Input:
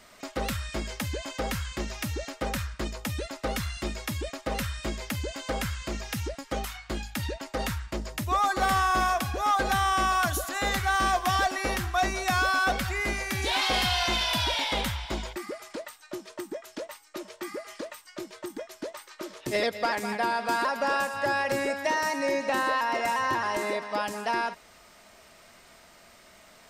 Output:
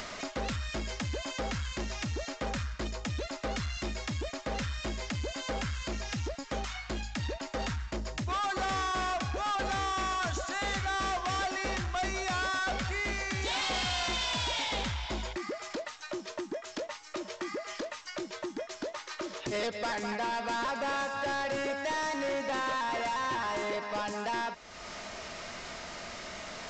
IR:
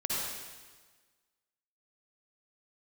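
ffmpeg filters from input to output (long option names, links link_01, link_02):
-af "acompressor=mode=upward:threshold=-29dB:ratio=2.5,aresample=16000,asoftclip=type=tanh:threshold=-29dB,aresample=44100"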